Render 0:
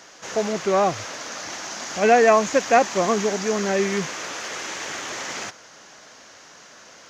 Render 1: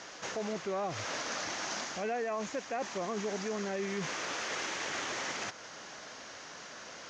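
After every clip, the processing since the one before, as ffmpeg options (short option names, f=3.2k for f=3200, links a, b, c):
-af "lowpass=6.4k,areverse,acompressor=threshold=-26dB:ratio=6,areverse,alimiter=level_in=3dB:limit=-24dB:level=0:latency=1:release=200,volume=-3dB"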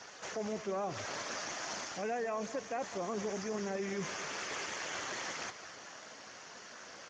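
-filter_complex "[0:a]asplit=2[a][b];[b]aecho=0:1:210|420|630|840|1050:0.237|0.111|0.0524|0.0246|0.0116[c];[a][c]amix=inputs=2:normalize=0,volume=-2.5dB" -ar 32000 -c:a libspeex -b:a 15k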